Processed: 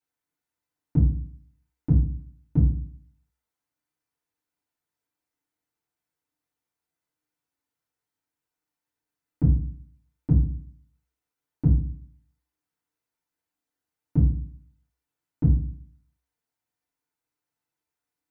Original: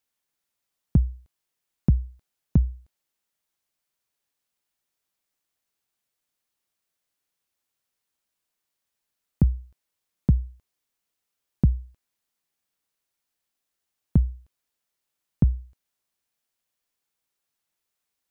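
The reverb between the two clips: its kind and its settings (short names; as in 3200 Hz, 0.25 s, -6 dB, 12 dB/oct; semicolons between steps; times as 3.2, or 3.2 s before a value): FDN reverb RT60 0.46 s, low-frequency decay 1.4×, high-frequency decay 0.3×, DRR -9.5 dB; gain -12.5 dB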